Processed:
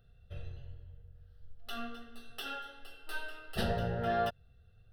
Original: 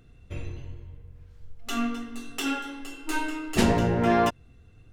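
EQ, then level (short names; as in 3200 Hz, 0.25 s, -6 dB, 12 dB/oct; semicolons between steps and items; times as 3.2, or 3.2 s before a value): fixed phaser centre 1500 Hz, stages 8; -7.0 dB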